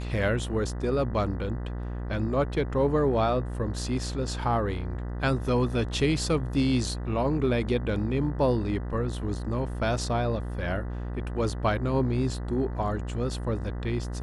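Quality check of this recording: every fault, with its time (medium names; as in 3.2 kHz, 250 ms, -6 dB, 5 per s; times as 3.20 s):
buzz 60 Hz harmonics 33 -33 dBFS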